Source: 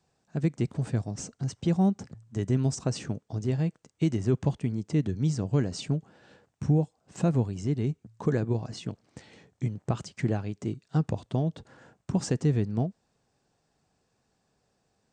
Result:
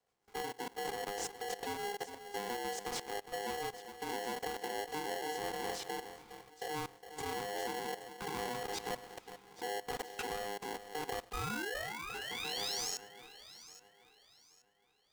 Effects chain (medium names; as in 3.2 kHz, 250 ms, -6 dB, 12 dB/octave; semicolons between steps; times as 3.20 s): companding laws mixed up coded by mu; bass shelf 440 Hz +2.5 dB; painted sound rise, 11.33–12.91 s, 630–6300 Hz -17 dBFS; in parallel at -2.5 dB: compression 6:1, threshold -33 dBFS, peak gain reduction 18.5 dB; on the sum: chord resonator C#2 sus4, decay 0.28 s; level held to a coarse grid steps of 22 dB; rotary cabinet horn 7 Hz, later 0.8 Hz, at 4.75 s; on a send: echo whose repeats swap between lows and highs 412 ms, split 840 Hz, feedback 55%, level -11 dB; on the sum: polarity switched at an audio rate 610 Hz; trim +6.5 dB